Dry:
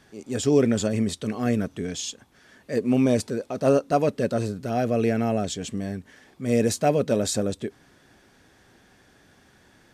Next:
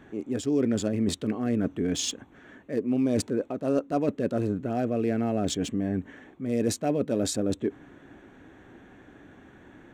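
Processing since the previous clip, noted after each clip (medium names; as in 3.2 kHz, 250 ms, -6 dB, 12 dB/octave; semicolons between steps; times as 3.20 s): local Wiener filter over 9 samples; peaking EQ 300 Hz +8 dB 0.59 oct; reverse; compression 4:1, threshold -29 dBFS, peak gain reduction 16 dB; reverse; trim +4.5 dB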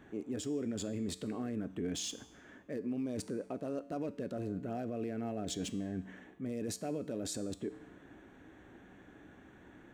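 treble shelf 8.8 kHz +3.5 dB; peak limiter -23.5 dBFS, peak gain reduction 11 dB; feedback comb 63 Hz, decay 0.86 s, harmonics odd, mix 60%; trim +1.5 dB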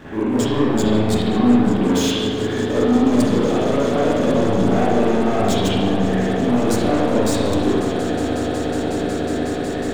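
echo with a slow build-up 183 ms, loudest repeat 8, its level -17.5 dB; waveshaping leveller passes 3; spring tank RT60 1.3 s, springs 37/49 ms, chirp 35 ms, DRR -9 dB; trim +5 dB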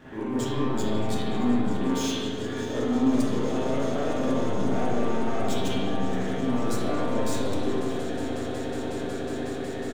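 feedback comb 130 Hz, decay 0.35 s, harmonics all, mix 80%; delay 623 ms -17 dB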